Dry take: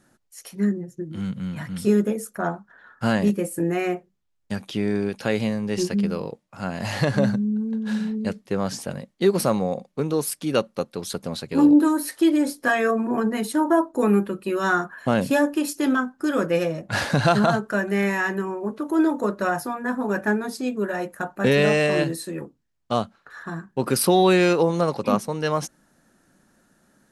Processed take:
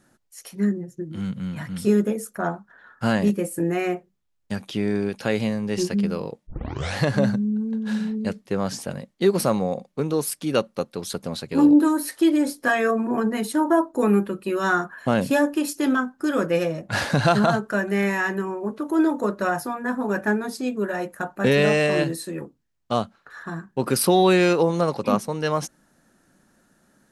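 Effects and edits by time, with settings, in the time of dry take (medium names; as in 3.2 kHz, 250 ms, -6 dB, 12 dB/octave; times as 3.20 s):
6.47 s: tape start 0.50 s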